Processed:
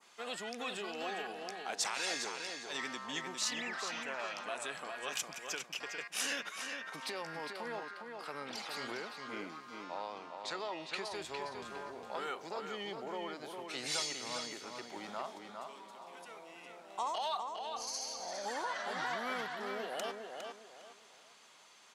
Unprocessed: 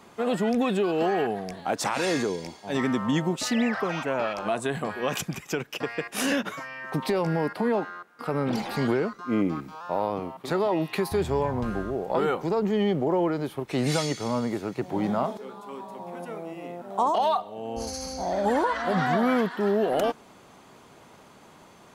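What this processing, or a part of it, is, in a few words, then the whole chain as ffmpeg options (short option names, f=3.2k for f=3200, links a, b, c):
piezo pickup straight into a mixer: -filter_complex "[0:a]asettb=1/sr,asplit=3[a][b][c];[a]atrim=end=9.844[d];[b]atrim=start=9.84:end=11.15,asetpts=PTS-STARTPTS,afade=t=in:d=0.004:c=qsin,afade=t=out:st=1.306:d=0.004:c=qsin,lowpass=f=8.3k:w=0.5412,lowpass=f=8.3k:w=1.3066[e];[c]atrim=start=11.146[f];[d][e]acrossfade=d=0.004:c1=hsin:c2=qsin[g];[g][f]acrossfade=d=0.004:c1=qsin:c2=hsin,adynamicequalizer=threshold=0.00501:dfrequency=3800:dqfactor=0.72:tfrequency=3800:tqfactor=0.72:attack=5:release=100:ratio=0.375:range=2:mode=cutabove:tftype=bell,lowpass=5.4k,aderivative,asplit=2[h][i];[i]adelay=407,lowpass=f=4.7k:p=1,volume=-5dB,asplit=2[j][k];[k]adelay=407,lowpass=f=4.7k:p=1,volume=0.3,asplit=2[l][m];[m]adelay=407,lowpass=f=4.7k:p=1,volume=0.3,asplit=2[n][o];[o]adelay=407,lowpass=f=4.7k:p=1,volume=0.3[p];[h][j][l][n][p]amix=inputs=5:normalize=0,volume=5dB"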